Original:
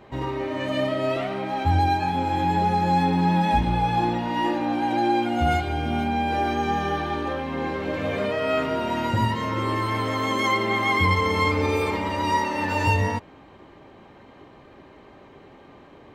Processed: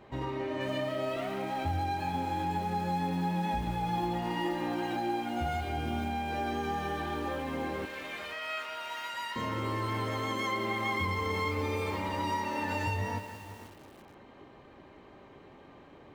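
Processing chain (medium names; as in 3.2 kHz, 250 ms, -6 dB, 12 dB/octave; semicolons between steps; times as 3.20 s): 3.86–4.96 s: comb 5.7 ms, depth 70%; 7.85–9.36 s: high-pass 1.4 kHz 12 dB/octave; compression 3:1, threshold -25 dBFS, peak gain reduction 7.5 dB; bucket-brigade echo 180 ms, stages 4096, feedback 46%, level -11.5 dB; bit-crushed delay 481 ms, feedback 35%, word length 6-bit, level -13 dB; trim -5.5 dB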